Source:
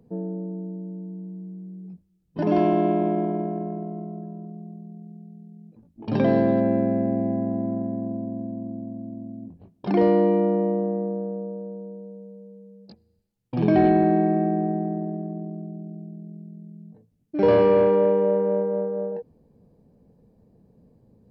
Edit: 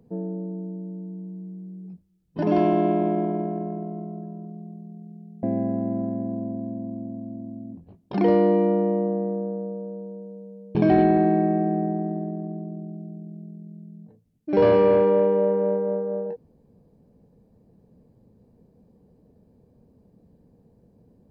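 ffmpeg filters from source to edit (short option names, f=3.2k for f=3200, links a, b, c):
-filter_complex "[0:a]asplit=3[a][b][c];[a]atrim=end=5.432[d];[b]atrim=start=7.158:end=12.482[e];[c]atrim=start=13.608[f];[d][e]acrossfade=d=0.004:c1=hsin:c2=hsin[g];[g][f]acrossfade=d=0.004:c1=hsin:c2=hsin"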